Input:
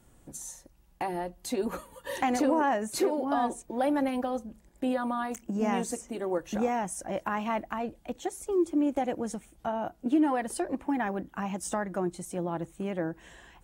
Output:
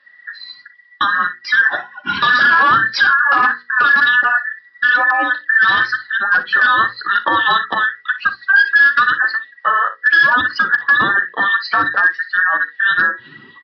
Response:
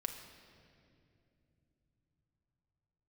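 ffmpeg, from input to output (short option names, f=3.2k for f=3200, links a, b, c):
-af "afftfilt=real='real(if(between(b,1,1012),(2*floor((b-1)/92)+1)*92-b,b),0)':imag='imag(if(between(b,1,1012),(2*floor((b-1)/92)+1)*92-b,b),0)*if(between(b,1,1012),-1,1)':win_size=2048:overlap=0.75,afftdn=nr=13:nf=-46,highshelf=f=2.7k:g=12,aresample=11025,aeval=exprs='clip(val(0),-1,0.112)':c=same,aresample=44100,bandreject=f=60:t=h:w=6,bandreject=f=120:t=h:w=6,bandreject=f=180:t=h:w=6,bandreject=f=240:t=h:w=6,bandreject=f=300:t=h:w=6,bandreject=f=360:t=h:w=6,bandreject=f=420:t=h:w=6,bandreject=f=480:t=h:w=6,bandreject=f=540:t=h:w=6,flanger=delay=3.4:depth=5.7:regen=-18:speed=0.95:shape=sinusoidal,highpass=f=96:w=0.5412,highpass=f=96:w=1.3066,aecho=1:1:42|60:0.158|0.158,alimiter=level_in=20.5dB:limit=-1dB:release=50:level=0:latency=1,volume=-3dB"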